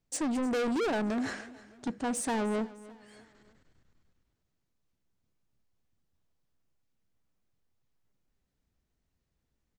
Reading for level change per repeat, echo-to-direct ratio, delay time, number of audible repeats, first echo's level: −7.5 dB, −18.0 dB, 305 ms, 3, −19.0 dB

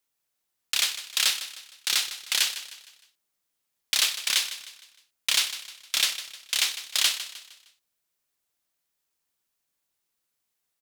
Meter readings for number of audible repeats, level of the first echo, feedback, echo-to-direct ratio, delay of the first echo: 3, −13.0 dB, 41%, −12.0 dB, 154 ms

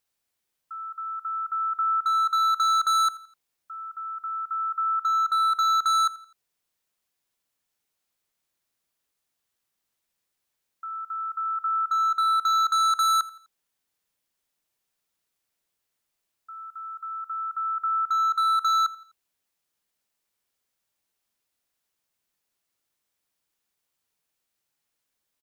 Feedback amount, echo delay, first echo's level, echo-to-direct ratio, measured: 40%, 84 ms, −19.0 dB, −18.5 dB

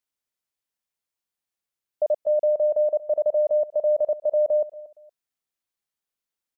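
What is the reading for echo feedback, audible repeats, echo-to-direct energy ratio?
25%, 2, −17.5 dB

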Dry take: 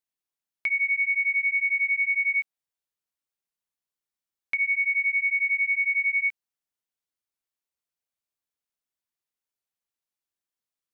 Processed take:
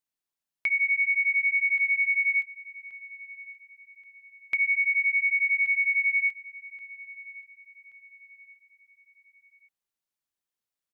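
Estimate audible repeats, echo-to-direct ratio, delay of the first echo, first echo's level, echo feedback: 2, −18.0 dB, 1,128 ms, −18.5 dB, 38%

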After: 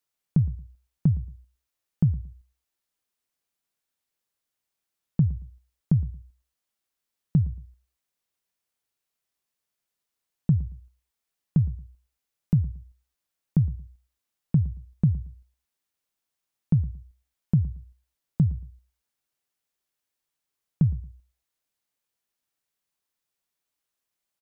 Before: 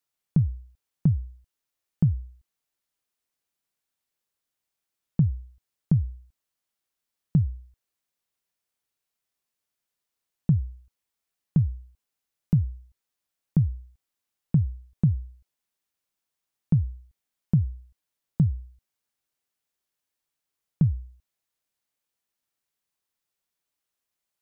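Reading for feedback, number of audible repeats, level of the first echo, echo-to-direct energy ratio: 23%, 2, −20.0 dB, −20.0 dB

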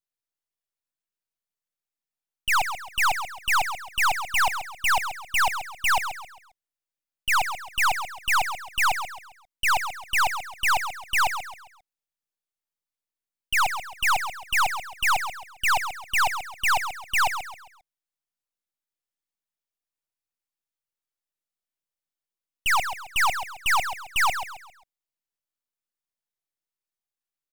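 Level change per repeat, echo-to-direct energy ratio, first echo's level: −9.0 dB, −9.0 dB, −9.5 dB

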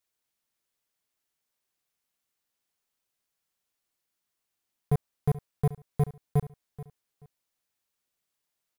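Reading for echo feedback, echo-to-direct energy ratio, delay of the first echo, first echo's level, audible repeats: 23%, −16.5 dB, 431 ms, −16.5 dB, 2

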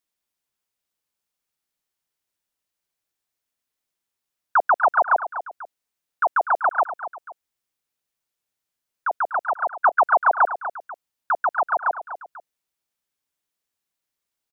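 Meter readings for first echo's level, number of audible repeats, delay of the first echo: −12.0 dB, 2, 245 ms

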